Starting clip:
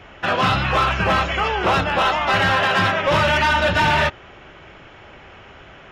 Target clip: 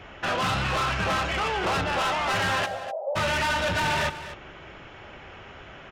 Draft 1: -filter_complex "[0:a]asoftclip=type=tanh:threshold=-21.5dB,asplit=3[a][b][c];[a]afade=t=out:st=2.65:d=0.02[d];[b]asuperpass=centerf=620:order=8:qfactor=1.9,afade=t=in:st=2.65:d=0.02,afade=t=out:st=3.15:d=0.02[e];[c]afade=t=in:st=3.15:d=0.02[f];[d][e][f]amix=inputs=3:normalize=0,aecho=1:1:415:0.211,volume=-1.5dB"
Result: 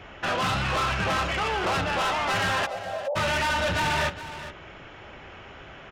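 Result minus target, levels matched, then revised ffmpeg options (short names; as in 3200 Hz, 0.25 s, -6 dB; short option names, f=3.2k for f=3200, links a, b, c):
echo 0.167 s late
-filter_complex "[0:a]asoftclip=type=tanh:threshold=-21.5dB,asplit=3[a][b][c];[a]afade=t=out:st=2.65:d=0.02[d];[b]asuperpass=centerf=620:order=8:qfactor=1.9,afade=t=in:st=2.65:d=0.02,afade=t=out:st=3.15:d=0.02[e];[c]afade=t=in:st=3.15:d=0.02[f];[d][e][f]amix=inputs=3:normalize=0,aecho=1:1:248:0.211,volume=-1.5dB"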